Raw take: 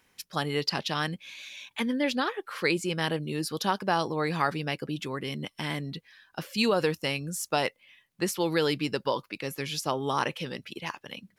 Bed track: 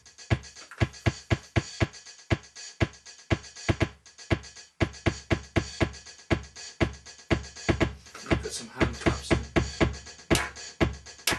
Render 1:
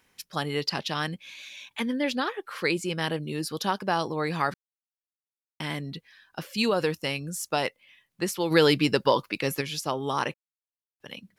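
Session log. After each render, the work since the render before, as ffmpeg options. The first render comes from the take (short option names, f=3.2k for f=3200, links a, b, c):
-filter_complex "[0:a]asplit=3[a][b][c];[a]afade=t=out:st=8.5:d=0.02[d];[b]acontrast=68,afade=t=in:st=8.5:d=0.02,afade=t=out:st=9.6:d=0.02[e];[c]afade=t=in:st=9.6:d=0.02[f];[d][e][f]amix=inputs=3:normalize=0,asplit=5[g][h][i][j][k];[g]atrim=end=4.54,asetpts=PTS-STARTPTS,afade=t=out:st=4.536:d=0.004:c=hsin[l];[h]atrim=start=4.54:end=5.6,asetpts=PTS-STARTPTS,volume=0[m];[i]atrim=start=5.6:end=10.34,asetpts=PTS-STARTPTS,afade=t=in:d=0.004:c=hsin,afade=t=out:st=4.736:d=0.004:c=hsin[n];[j]atrim=start=10.34:end=11,asetpts=PTS-STARTPTS,volume=0[o];[k]atrim=start=11,asetpts=PTS-STARTPTS,afade=t=in:d=0.004:c=hsin[p];[l][m][n][o][p]concat=n=5:v=0:a=1"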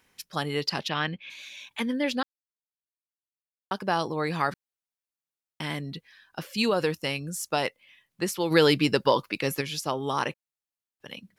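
-filter_complex "[0:a]asplit=3[a][b][c];[a]afade=t=out:st=0.88:d=0.02[d];[b]lowpass=f=2.8k:t=q:w=1.6,afade=t=in:st=0.88:d=0.02,afade=t=out:st=1.29:d=0.02[e];[c]afade=t=in:st=1.29:d=0.02[f];[d][e][f]amix=inputs=3:normalize=0,asplit=3[g][h][i];[g]atrim=end=2.23,asetpts=PTS-STARTPTS,afade=t=out:st=2.226:d=0.004:c=hsin[j];[h]atrim=start=2.23:end=3.71,asetpts=PTS-STARTPTS,volume=0[k];[i]atrim=start=3.71,asetpts=PTS-STARTPTS,afade=t=in:d=0.004:c=hsin[l];[j][k][l]concat=n=3:v=0:a=1"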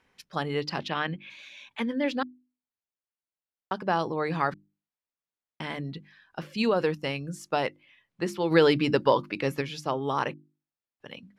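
-af "aemphasis=mode=reproduction:type=75fm,bandreject=f=50:t=h:w=6,bandreject=f=100:t=h:w=6,bandreject=f=150:t=h:w=6,bandreject=f=200:t=h:w=6,bandreject=f=250:t=h:w=6,bandreject=f=300:t=h:w=6,bandreject=f=350:t=h:w=6"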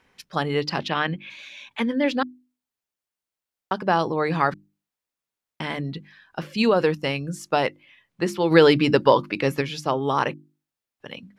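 -af "volume=5.5dB"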